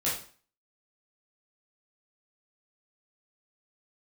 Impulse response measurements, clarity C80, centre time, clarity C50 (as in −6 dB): 10.0 dB, 39 ms, 4.5 dB